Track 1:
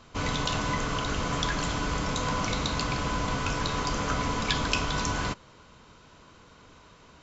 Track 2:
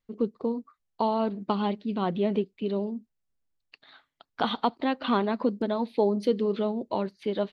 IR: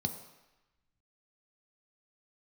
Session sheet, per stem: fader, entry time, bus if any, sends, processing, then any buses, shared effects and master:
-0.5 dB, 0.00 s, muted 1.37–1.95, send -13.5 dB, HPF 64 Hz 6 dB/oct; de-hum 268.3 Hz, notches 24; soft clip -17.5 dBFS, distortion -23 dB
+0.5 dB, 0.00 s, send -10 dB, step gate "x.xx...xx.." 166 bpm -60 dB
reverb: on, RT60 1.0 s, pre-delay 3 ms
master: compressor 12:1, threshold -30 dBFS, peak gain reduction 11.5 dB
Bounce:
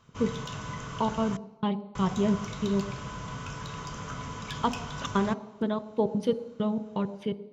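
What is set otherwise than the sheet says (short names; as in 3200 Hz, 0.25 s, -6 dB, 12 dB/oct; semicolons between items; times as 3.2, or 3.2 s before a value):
stem 1 -0.5 dB -> -8.5 dB; master: missing compressor 12:1, threshold -30 dBFS, peak gain reduction 11.5 dB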